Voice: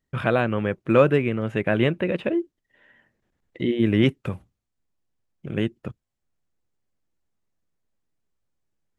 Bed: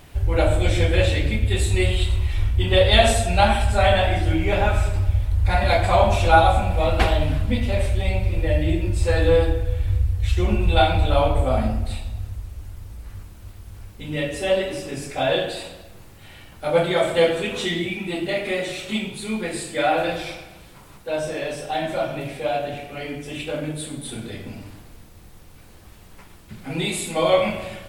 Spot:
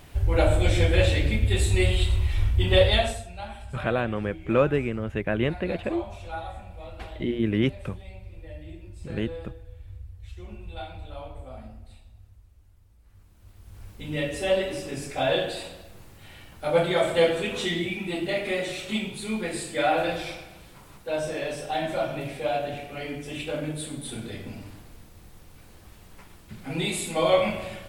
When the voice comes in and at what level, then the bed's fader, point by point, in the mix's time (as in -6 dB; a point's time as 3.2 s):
3.60 s, -4.5 dB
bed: 2.83 s -2 dB
3.33 s -21 dB
12.99 s -21 dB
13.89 s -3 dB